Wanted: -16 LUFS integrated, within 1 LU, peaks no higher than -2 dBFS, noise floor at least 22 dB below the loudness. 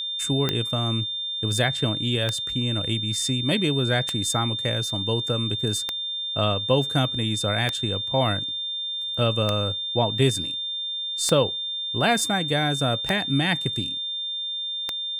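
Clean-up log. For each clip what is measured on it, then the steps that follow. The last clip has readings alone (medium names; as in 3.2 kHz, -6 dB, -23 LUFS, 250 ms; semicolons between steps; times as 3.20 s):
clicks found 9; steady tone 3.6 kHz; tone level -27 dBFS; loudness -23.5 LUFS; peak level -6.0 dBFS; loudness target -16.0 LUFS
-> de-click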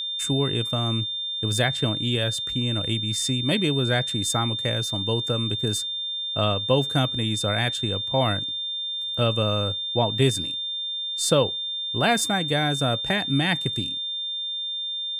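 clicks found 0; steady tone 3.6 kHz; tone level -27 dBFS
-> band-stop 3.6 kHz, Q 30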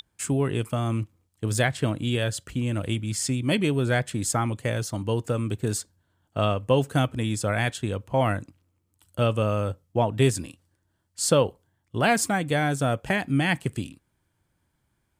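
steady tone not found; loudness -26.0 LUFS; peak level -7.5 dBFS; loudness target -16.0 LUFS
-> trim +10 dB; peak limiter -2 dBFS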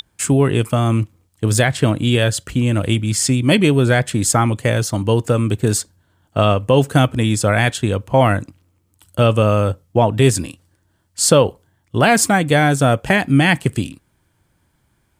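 loudness -16.5 LUFS; peak level -2.0 dBFS; noise floor -64 dBFS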